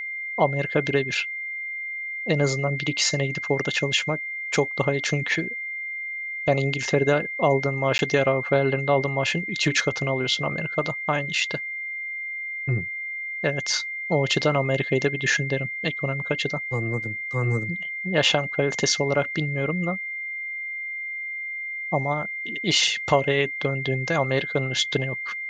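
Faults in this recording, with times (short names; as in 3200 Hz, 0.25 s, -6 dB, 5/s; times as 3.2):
tone 2100 Hz -29 dBFS
7.98–7.99 gap 11 ms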